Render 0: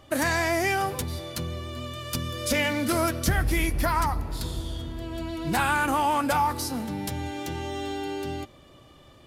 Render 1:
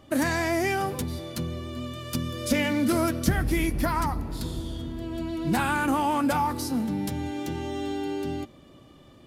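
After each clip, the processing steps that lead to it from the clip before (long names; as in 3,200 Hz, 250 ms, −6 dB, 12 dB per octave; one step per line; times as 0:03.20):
parametric band 230 Hz +8.5 dB 1.5 octaves
level −3 dB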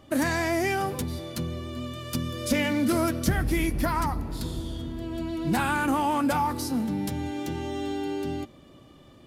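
soft clipping −10.5 dBFS, distortion −29 dB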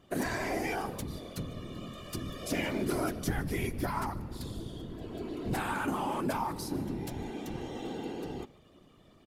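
random phases in short frames
single-tap delay 149 ms −23 dB
level −7.5 dB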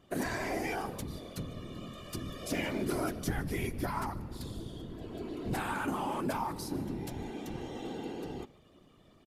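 downsampling to 32,000 Hz
level −1.5 dB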